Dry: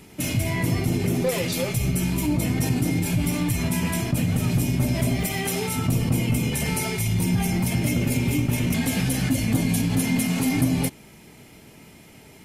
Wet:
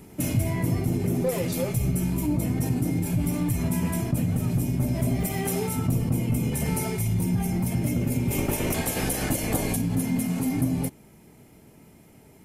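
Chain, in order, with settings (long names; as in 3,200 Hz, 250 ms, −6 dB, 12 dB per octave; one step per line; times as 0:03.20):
0:08.30–0:09.75: ceiling on every frequency bin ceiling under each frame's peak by 18 dB
parametric band 3,400 Hz −10 dB 2.4 octaves
speech leveller 0.5 s
level −1.5 dB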